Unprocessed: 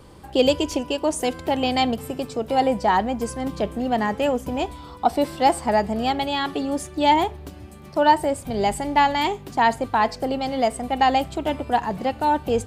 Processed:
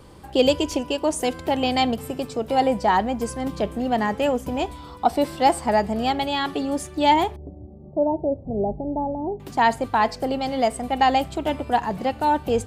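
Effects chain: 7.36–9.40 s: steep low-pass 700 Hz 36 dB/octave

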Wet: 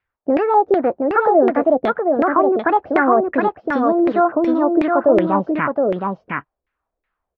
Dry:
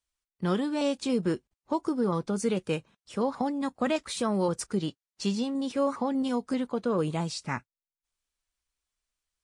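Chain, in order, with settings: gliding tape speed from 152% -> 104%; bass shelf 160 Hz -9.5 dB; in parallel at +3 dB: peak limiter -28 dBFS, peak gain reduction 12 dB; on the sum: distance through air 200 m; on a send: delay 718 ms -3.5 dB; on the sum: LFO low-pass saw down 2.7 Hz 410–2200 Hz; trim +6.5 dB

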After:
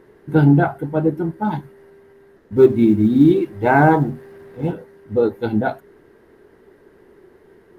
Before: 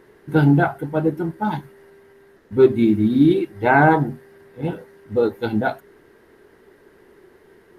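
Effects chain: 2.56–4.72 s: companding laws mixed up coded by mu; tilt shelf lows +3.5 dB, about 1.2 kHz; trim -1 dB

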